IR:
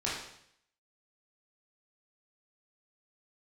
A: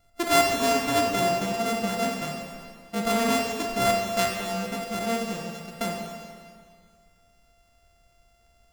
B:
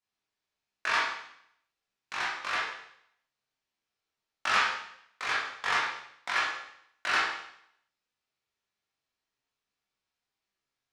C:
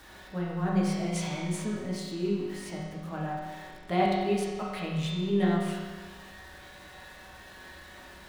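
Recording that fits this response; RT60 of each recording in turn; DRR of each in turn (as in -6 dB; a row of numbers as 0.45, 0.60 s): B; 2.0, 0.70, 1.5 s; 0.5, -7.5, -6.0 dB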